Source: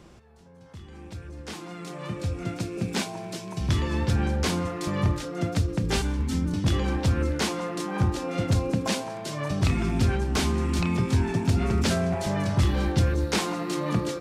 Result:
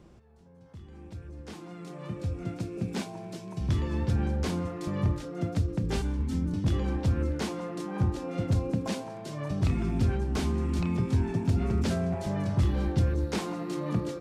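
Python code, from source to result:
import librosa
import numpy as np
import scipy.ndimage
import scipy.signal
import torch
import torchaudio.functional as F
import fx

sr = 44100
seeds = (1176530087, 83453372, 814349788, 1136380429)

y = fx.tilt_shelf(x, sr, db=4.0, hz=820.0)
y = y * librosa.db_to_amplitude(-6.5)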